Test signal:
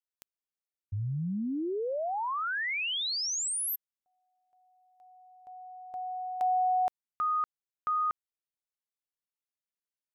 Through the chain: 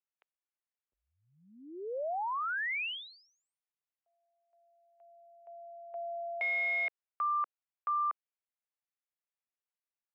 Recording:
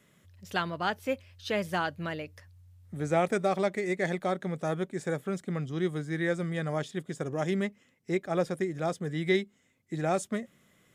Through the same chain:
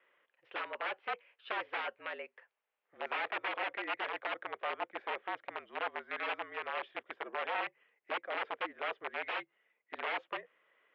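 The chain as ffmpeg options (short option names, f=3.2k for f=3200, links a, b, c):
-af "aeval=exprs='(mod(17.8*val(0)+1,2)-1)/17.8':c=same,highpass=f=540:t=q:w=0.5412,highpass=f=540:t=q:w=1.307,lowpass=f=2.9k:t=q:w=0.5176,lowpass=f=2.9k:t=q:w=0.7071,lowpass=f=2.9k:t=q:w=1.932,afreqshift=-54,volume=-2dB"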